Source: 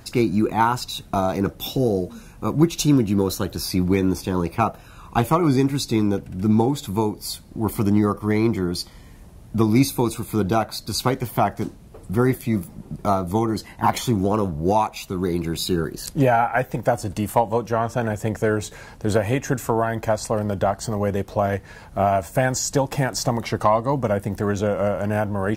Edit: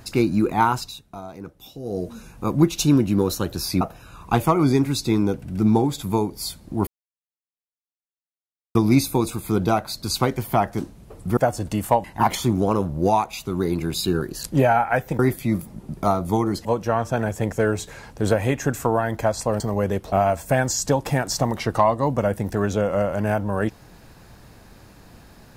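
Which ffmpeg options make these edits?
-filter_complex "[0:a]asplit=12[s0][s1][s2][s3][s4][s5][s6][s7][s8][s9][s10][s11];[s0]atrim=end=1.02,asetpts=PTS-STARTPTS,afade=t=out:st=0.75:d=0.27:silence=0.177828[s12];[s1]atrim=start=1.02:end=1.83,asetpts=PTS-STARTPTS,volume=0.178[s13];[s2]atrim=start=1.83:end=3.812,asetpts=PTS-STARTPTS,afade=t=in:d=0.27:silence=0.177828[s14];[s3]atrim=start=4.648:end=7.71,asetpts=PTS-STARTPTS,afade=t=out:st=3.058:d=0.004:c=hsin[s15];[s4]atrim=start=7.71:end=9.59,asetpts=PTS-STARTPTS,volume=0[s16];[s5]atrim=start=9.59:end=12.212,asetpts=PTS-STARTPTS,afade=t=in:d=0.004:c=hsin[s17];[s6]atrim=start=16.818:end=17.492[s18];[s7]atrim=start=13.668:end=16.822[s19];[s8]atrim=start=12.208:end=13.672[s20];[s9]atrim=start=17.488:end=20.442[s21];[s10]atrim=start=20.838:end=21.362[s22];[s11]atrim=start=21.978[s23];[s12][s13][s14]concat=n=3:v=0:a=1[s24];[s15][s16][s17]concat=n=3:v=0:a=1[s25];[s24][s25]acrossfade=d=0.004:c1=hsin:c2=hsin[s26];[s26][s18]acrossfade=d=0.004:c1=hsin:c2=hsin[s27];[s27][s19]acrossfade=d=0.004:c1=hsin:c2=hsin[s28];[s28][s20]acrossfade=d=0.004:c1=hsin:c2=hsin[s29];[s29][s21]acrossfade=d=0.004:c1=hsin:c2=hsin[s30];[s30][s22]acrossfade=d=0.004:c1=hsin:c2=hsin[s31];[s31][s23]acrossfade=d=0.004:c1=hsin:c2=hsin"

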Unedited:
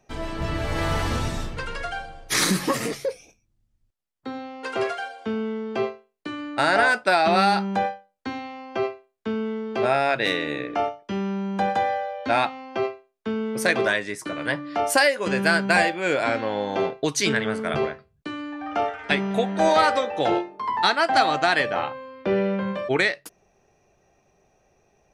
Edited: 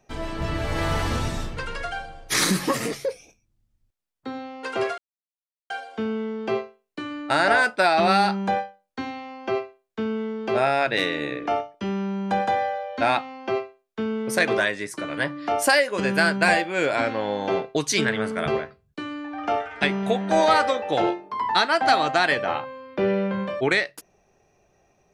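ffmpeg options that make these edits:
-filter_complex "[0:a]asplit=2[s0][s1];[s0]atrim=end=4.98,asetpts=PTS-STARTPTS,afade=t=out:st=4.976:d=0.004:c=hsin,apad=pad_dur=0.72[s2];[s1]atrim=start=4.98,asetpts=PTS-STARTPTS,afade=t=in:d=0.004:c=hsin[s3];[s2][s3]concat=n=2:v=0:a=1"

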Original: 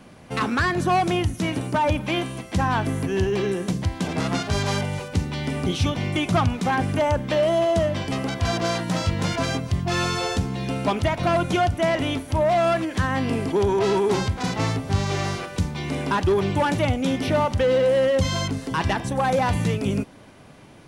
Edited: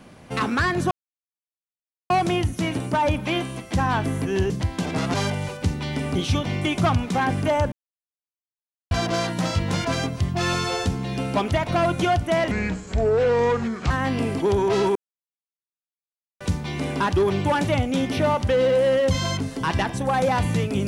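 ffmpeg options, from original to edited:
-filter_complex "[0:a]asplit=10[s0][s1][s2][s3][s4][s5][s6][s7][s8][s9];[s0]atrim=end=0.91,asetpts=PTS-STARTPTS,afade=t=out:st=0.906:d=0.004:c=hsin,apad=pad_dur=1.19[s10];[s1]atrim=start=0.91:end=3.312,asetpts=PTS-STARTPTS,afade=t=in:d=0.004:c=hsin[s11];[s2]atrim=start=3.718:end=4.362[s12];[s3]atrim=start=4.648:end=7.23,asetpts=PTS-STARTPTS,afade=t=out:st=2.578:d=0.004:c=hsin[s13];[s4]atrim=start=7.23:end=8.42,asetpts=PTS-STARTPTS,volume=0[s14];[s5]atrim=start=8.42:end=12.024,asetpts=PTS-STARTPTS,afade=t=in:d=0.004:c=hsin[s15];[s6]atrim=start=12.02:end=13.01,asetpts=PTS-STARTPTS,asetrate=31311,aresample=44100[s16];[s7]atrim=start=13.006:end=14.06,asetpts=PTS-STARTPTS,afade=t=out:st=1.05:d=0.004:c=hsin[s17];[s8]atrim=start=14.06:end=15.51,asetpts=PTS-STARTPTS,volume=0[s18];[s9]atrim=start=15.51,asetpts=PTS-STARTPTS,afade=t=in:d=0.004:c=hsin[s19];[s10][s11]concat=n=2:v=0:a=1[s20];[s20][s12]acrossfade=d=0.004:c1=hsin:c2=hsin[s21];[s13][s14][s15]concat=n=3:v=0:a=1[s22];[s21][s22]acrossfade=d=0.004:c1=hsin:c2=hsin[s23];[s23][s16]acrossfade=d=0.004:c1=hsin:c2=hsin[s24];[s17][s18][s19]concat=n=3:v=0:a=1[s25];[s24][s25]acrossfade=d=0.004:c1=hsin:c2=hsin"

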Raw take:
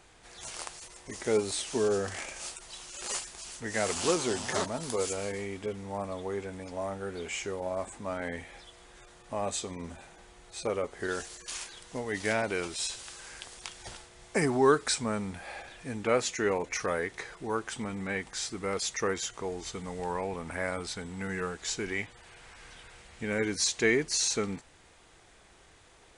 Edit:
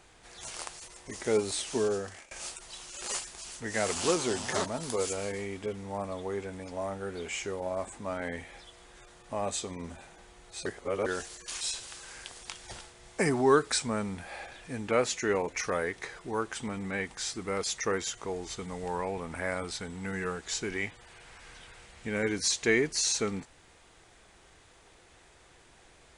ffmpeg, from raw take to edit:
-filter_complex "[0:a]asplit=5[s0][s1][s2][s3][s4];[s0]atrim=end=2.31,asetpts=PTS-STARTPTS,afade=t=out:st=1.78:d=0.53:silence=0.0749894[s5];[s1]atrim=start=2.31:end=10.662,asetpts=PTS-STARTPTS,afade=t=in:d=0.004:c=hsin:silence=0.0749894[s6];[s2]atrim=start=10.658:end=11.062,asetpts=PTS-STARTPTS,areverse[s7];[s3]atrim=start=11.058:end=11.612[s8];[s4]atrim=start=12.768[s9];[s5][s6]concat=n=2:v=0:a=1[s10];[s10][s7]acrossfade=d=0.004:c1=hsin:c2=hsin[s11];[s11][s8]acrossfade=d=0.004:c1=hsin:c2=hsin[s12];[s12][s9]acrossfade=d=0.004:c1=hsin:c2=hsin"

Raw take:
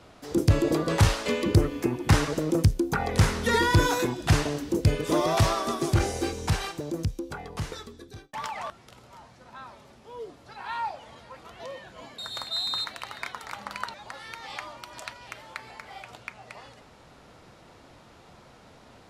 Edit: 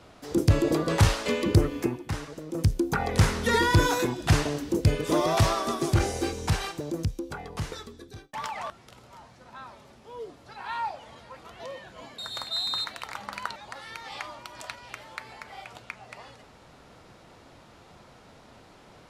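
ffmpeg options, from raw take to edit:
-filter_complex "[0:a]asplit=4[s0][s1][s2][s3];[s0]atrim=end=2.07,asetpts=PTS-STARTPTS,afade=t=out:st=1.83:d=0.24:silence=0.251189[s4];[s1]atrim=start=2.07:end=2.5,asetpts=PTS-STARTPTS,volume=0.251[s5];[s2]atrim=start=2.5:end=13.042,asetpts=PTS-STARTPTS,afade=t=in:d=0.24:silence=0.251189[s6];[s3]atrim=start=13.418[s7];[s4][s5][s6]concat=n=3:v=0:a=1[s8];[s8][s7]acrossfade=d=0.004:c1=hsin:c2=hsin"

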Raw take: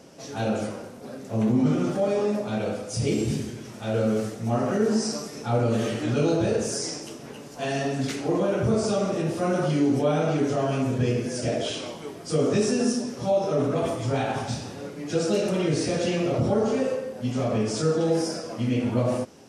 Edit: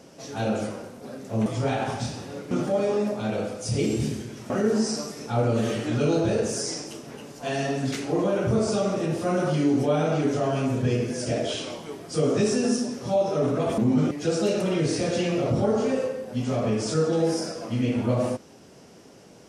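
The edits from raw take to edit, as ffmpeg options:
-filter_complex "[0:a]asplit=6[s0][s1][s2][s3][s4][s5];[s0]atrim=end=1.462[s6];[s1]atrim=start=13.938:end=14.992[s7];[s2]atrim=start=1.788:end=3.782[s8];[s3]atrim=start=4.658:end=13.942[s9];[s4]atrim=start=1.458:end=1.792[s10];[s5]atrim=start=14.988[s11];[s6][s7]acrossfade=d=0.004:c1=hsin:c2=hsin[s12];[s12][s8]acrossfade=d=0.004:c1=hsin:c2=hsin[s13];[s13][s9]acrossfade=d=0.004:c1=hsin:c2=hsin[s14];[s14][s10]acrossfade=d=0.004:c1=hsin:c2=hsin[s15];[s15][s11]acrossfade=d=0.004:c1=hsin:c2=hsin"

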